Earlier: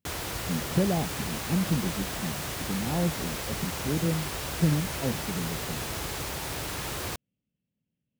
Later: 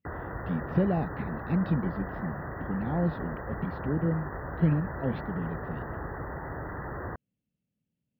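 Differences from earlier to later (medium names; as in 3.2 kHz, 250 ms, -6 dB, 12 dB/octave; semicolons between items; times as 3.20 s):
background: add brick-wall FIR band-stop 2–13 kHz; master: add distance through air 190 m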